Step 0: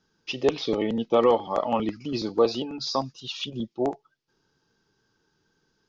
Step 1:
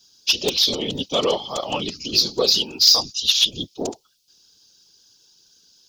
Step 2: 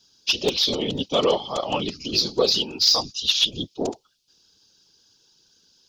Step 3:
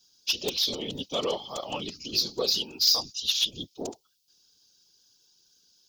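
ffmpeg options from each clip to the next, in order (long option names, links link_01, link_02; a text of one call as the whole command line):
ffmpeg -i in.wav -af "aexciter=amount=13.7:drive=5.4:freq=2900,acontrast=40,afftfilt=real='hypot(re,im)*cos(2*PI*random(0))':imag='hypot(re,im)*sin(2*PI*random(1))':win_size=512:overlap=0.75,volume=-1.5dB" out.wav
ffmpeg -i in.wav -af "lowpass=frequency=3100:poles=1,volume=1dB" out.wav
ffmpeg -i in.wav -af "aemphasis=mode=production:type=50fm,volume=-9dB" out.wav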